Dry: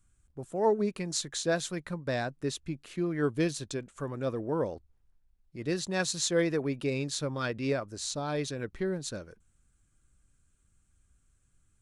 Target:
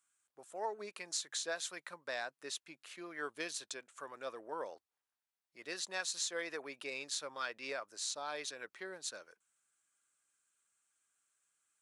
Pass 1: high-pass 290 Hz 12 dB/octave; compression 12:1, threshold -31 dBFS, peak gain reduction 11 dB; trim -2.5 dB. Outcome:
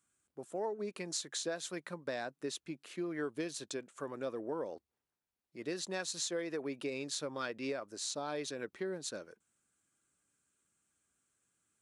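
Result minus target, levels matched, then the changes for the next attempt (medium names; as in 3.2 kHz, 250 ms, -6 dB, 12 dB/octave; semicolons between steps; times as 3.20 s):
250 Hz band +10.5 dB
change: high-pass 830 Hz 12 dB/octave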